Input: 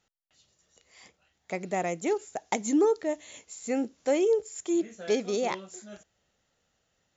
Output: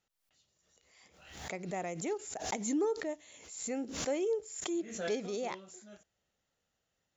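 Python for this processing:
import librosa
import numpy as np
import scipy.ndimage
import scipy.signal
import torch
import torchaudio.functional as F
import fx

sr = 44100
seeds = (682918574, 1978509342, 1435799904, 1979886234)

y = fx.pre_swell(x, sr, db_per_s=67.0)
y = F.gain(torch.from_numpy(y), -8.5).numpy()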